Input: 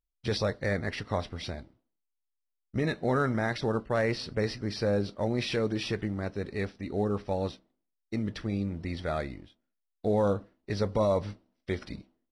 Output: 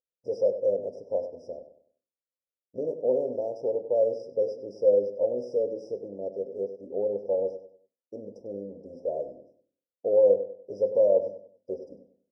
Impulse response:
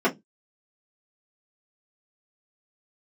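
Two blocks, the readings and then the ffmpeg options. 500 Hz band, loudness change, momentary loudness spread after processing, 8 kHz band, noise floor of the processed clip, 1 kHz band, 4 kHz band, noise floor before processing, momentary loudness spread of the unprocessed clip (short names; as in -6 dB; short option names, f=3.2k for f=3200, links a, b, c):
+6.5 dB, +3.5 dB, 19 LU, under -15 dB, under -85 dBFS, -9.5 dB, under -20 dB, -83 dBFS, 10 LU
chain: -filter_complex "[0:a]asplit=3[a][b][c];[a]bandpass=f=530:t=q:w=8,volume=0dB[d];[b]bandpass=f=1.84k:t=q:w=8,volume=-6dB[e];[c]bandpass=f=2.48k:t=q:w=8,volume=-9dB[f];[d][e][f]amix=inputs=3:normalize=0,asplit=2[g][h];[h]adelay=97,lowpass=f=4.1k:p=1,volume=-11dB,asplit=2[i][j];[j]adelay=97,lowpass=f=4.1k:p=1,volume=0.34,asplit=2[k][l];[l]adelay=97,lowpass=f=4.1k:p=1,volume=0.34,asplit=2[m][n];[n]adelay=97,lowpass=f=4.1k:p=1,volume=0.34[o];[g][i][k][m][o]amix=inputs=5:normalize=0,asplit=2[p][q];[1:a]atrim=start_sample=2205[r];[q][r]afir=irnorm=-1:irlink=0,volume=-24.5dB[s];[p][s]amix=inputs=2:normalize=0,afftfilt=real='re*(1-between(b*sr/4096,1000,4900))':imag='im*(1-between(b*sr/4096,1000,4900))':win_size=4096:overlap=0.75,volume=8.5dB"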